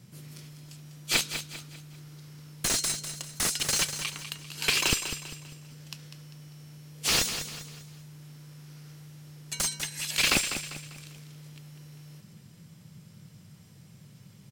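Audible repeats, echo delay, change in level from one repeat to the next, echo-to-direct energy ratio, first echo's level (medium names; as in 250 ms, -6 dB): 4, 198 ms, -8.0 dB, -9.0 dB, -9.5 dB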